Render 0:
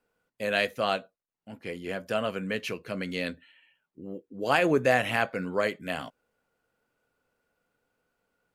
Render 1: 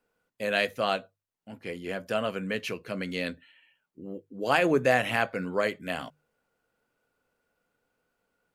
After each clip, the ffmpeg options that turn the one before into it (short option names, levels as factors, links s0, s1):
-af "bandreject=f=50:t=h:w=6,bandreject=f=100:t=h:w=6,bandreject=f=150:t=h:w=6"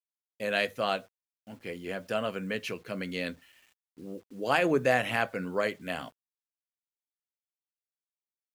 -af "acrusher=bits=9:mix=0:aa=0.000001,volume=0.794"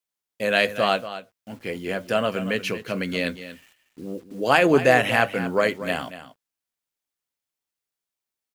-af "aecho=1:1:234:0.224,volume=2.51"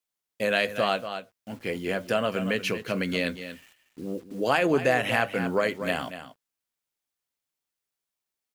-af "acompressor=threshold=0.0708:ratio=2"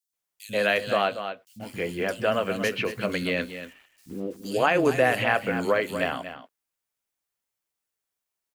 -filter_complex "[0:a]acrossover=split=210|3900[s0][s1][s2];[s0]adelay=90[s3];[s1]adelay=130[s4];[s3][s4][s2]amix=inputs=3:normalize=0,volume=1.26"